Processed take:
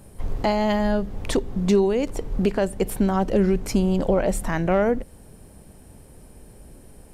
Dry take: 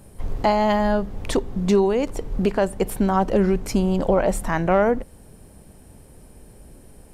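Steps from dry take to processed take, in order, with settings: dynamic bell 1 kHz, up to -6 dB, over -32 dBFS, Q 1.1

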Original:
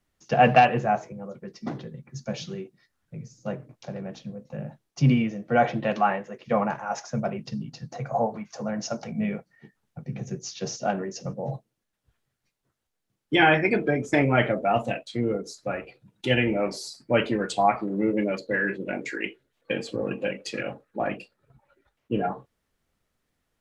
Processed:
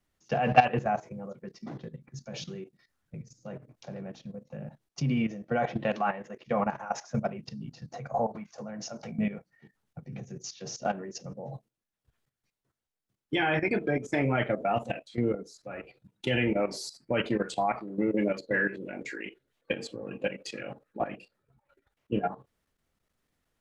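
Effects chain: level held to a coarse grid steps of 13 dB

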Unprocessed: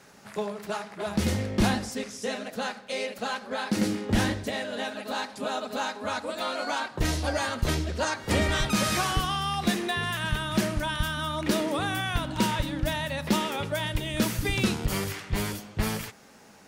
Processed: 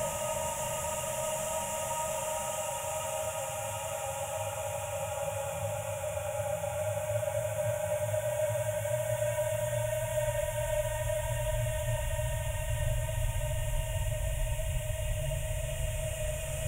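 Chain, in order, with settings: FFT filter 130 Hz 0 dB, 230 Hz -29 dB, 400 Hz -30 dB, 570 Hz +3 dB, 1.3 kHz -11 dB, 2.8 kHz -7 dB, 4.5 kHz -29 dB, 7.1 kHz +6 dB, 14 kHz -3 dB; Paulstretch 22×, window 0.50 s, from 13.34 s; on a send: feedback echo behind a high-pass 561 ms, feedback 81%, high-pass 4.6 kHz, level -7 dB; on the sum: trim -1 dB

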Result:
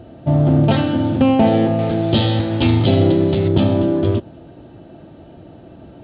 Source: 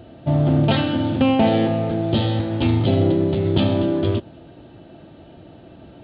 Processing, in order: treble shelf 2.1 kHz -8.5 dB, from 1.79 s +4 dB, from 3.48 s -8.5 dB; trim +3.5 dB

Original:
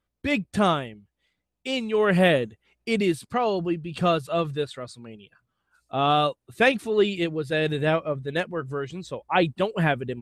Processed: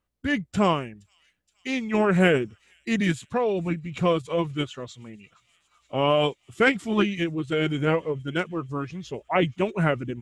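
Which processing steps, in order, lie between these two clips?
feedback echo behind a high-pass 470 ms, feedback 83%, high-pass 5 kHz, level -22.5 dB; formant shift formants -3 st

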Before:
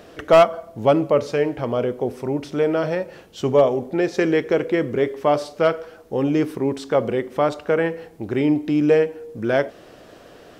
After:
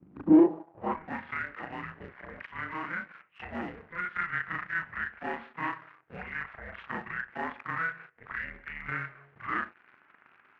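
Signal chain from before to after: short-time spectra conjugated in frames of 80 ms; mistuned SSB -340 Hz 180–2900 Hz; waveshaping leveller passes 2; band-pass sweep 200 Hz -> 1.7 kHz, 0.02–1.14 s; in parallel at +0.5 dB: compression, threshold -39 dBFS, peak gain reduction 25.5 dB; on the sum: trim -4 dB

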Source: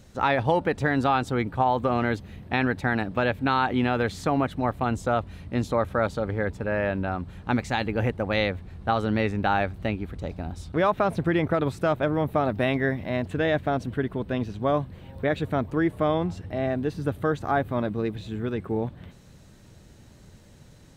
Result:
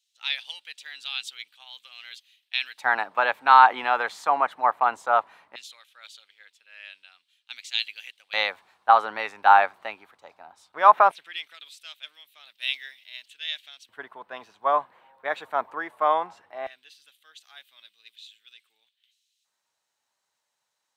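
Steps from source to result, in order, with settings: LFO high-pass square 0.18 Hz 930–3100 Hz; three bands expanded up and down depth 70%; trim -1 dB

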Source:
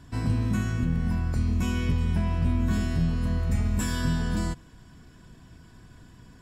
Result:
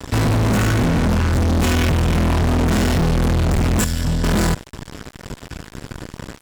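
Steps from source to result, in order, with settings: 3.84–4.24 s: amplifier tone stack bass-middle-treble 6-0-2; fuzz box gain 42 dB, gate -47 dBFS; trim -2 dB

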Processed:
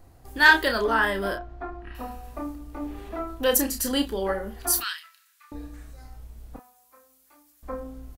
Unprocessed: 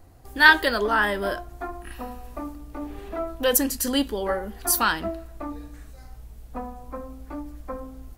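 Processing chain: 4.80–5.52 s: Bessel high-pass 2.4 kHz, order 8; 6.56–7.63 s: differentiator; saturation -4 dBFS, distortion -21 dB; 1.35–1.95 s: distance through air 230 m; doubling 31 ms -7 dB; trim -1.5 dB

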